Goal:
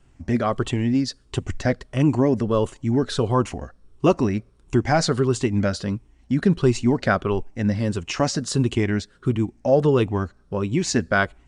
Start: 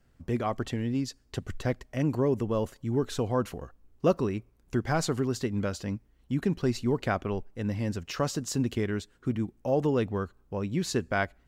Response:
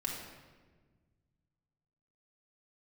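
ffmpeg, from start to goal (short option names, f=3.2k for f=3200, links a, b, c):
-af "afftfilt=real='re*pow(10,7/40*sin(2*PI*(0.66*log(max(b,1)*sr/1024/100)/log(2)-(-1.5)*(pts-256)/sr)))':imag='im*pow(10,7/40*sin(2*PI*(0.66*log(max(b,1)*sr/1024/100)/log(2)-(-1.5)*(pts-256)/sr)))':win_size=1024:overlap=0.75,bandreject=f=480:w=12,volume=7.5dB" -ar 22050 -c:a mp2 -b:a 128k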